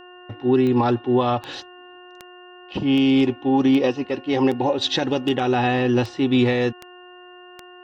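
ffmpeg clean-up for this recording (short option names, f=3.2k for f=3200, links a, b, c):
-af "adeclick=t=4,bandreject=f=360.2:t=h:w=4,bandreject=f=720.4:t=h:w=4,bandreject=f=1.0806k:t=h:w=4,bandreject=f=1.4408k:t=h:w=4,bandreject=f=1.801k:t=h:w=4,bandreject=f=2.8k:w=30"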